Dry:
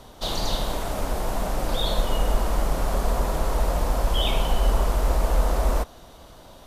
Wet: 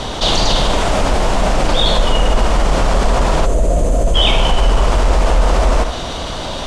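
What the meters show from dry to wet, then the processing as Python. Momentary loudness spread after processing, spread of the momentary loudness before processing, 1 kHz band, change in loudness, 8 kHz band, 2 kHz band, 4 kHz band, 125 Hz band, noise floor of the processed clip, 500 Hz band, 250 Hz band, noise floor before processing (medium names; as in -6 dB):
3 LU, 5 LU, +11.0 dB, +10.0 dB, +10.0 dB, +13.0 dB, +13.5 dB, +9.5 dB, -23 dBFS, +11.0 dB, +11.0 dB, -47 dBFS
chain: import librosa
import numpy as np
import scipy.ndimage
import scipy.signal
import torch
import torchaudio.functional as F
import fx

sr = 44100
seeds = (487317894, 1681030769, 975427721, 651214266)

p1 = fx.dynamic_eq(x, sr, hz=3900.0, q=3.5, threshold_db=-47.0, ratio=4.0, max_db=-4)
p2 = scipy.signal.sosfilt(scipy.signal.butter(4, 8400.0, 'lowpass', fs=sr, output='sos'), p1)
p3 = 10.0 ** (-19.5 / 20.0) * np.tanh(p2 / 10.0 ** (-19.5 / 20.0))
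p4 = p2 + (p3 * 10.0 ** (-8.0 / 20.0))
p5 = fx.peak_eq(p4, sr, hz=3000.0, db=5.5, octaves=1.3)
p6 = fx.spec_box(p5, sr, start_s=3.45, length_s=0.7, low_hz=730.0, high_hz=6000.0, gain_db=-13)
p7 = p6 + fx.echo_single(p6, sr, ms=78, db=-13.0, dry=0)
p8 = fx.env_flatten(p7, sr, amount_pct=50)
y = p8 * 10.0 ** (5.0 / 20.0)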